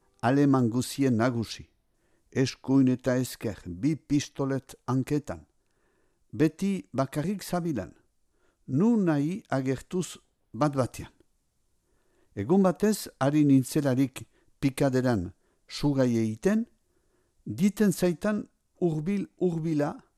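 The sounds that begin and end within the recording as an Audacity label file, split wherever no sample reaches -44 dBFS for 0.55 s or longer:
2.320000	5.420000	sound
6.330000	7.920000	sound
8.680000	11.070000	sound
12.360000	16.640000	sound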